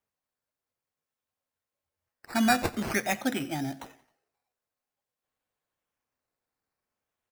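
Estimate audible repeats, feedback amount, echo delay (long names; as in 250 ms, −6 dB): 3, 46%, 89 ms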